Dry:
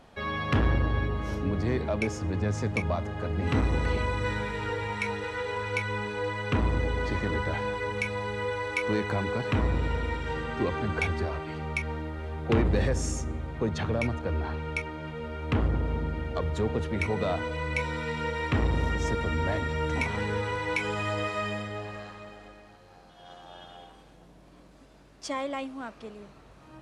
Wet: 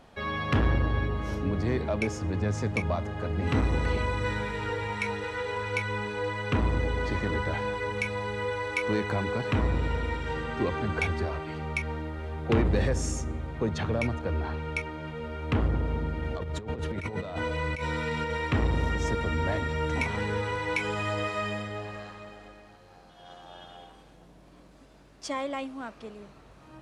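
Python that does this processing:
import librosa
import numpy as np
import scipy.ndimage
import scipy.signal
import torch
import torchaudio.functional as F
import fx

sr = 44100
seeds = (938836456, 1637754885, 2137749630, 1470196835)

y = fx.over_compress(x, sr, threshold_db=-31.0, ratio=-0.5, at=(16.21, 18.37))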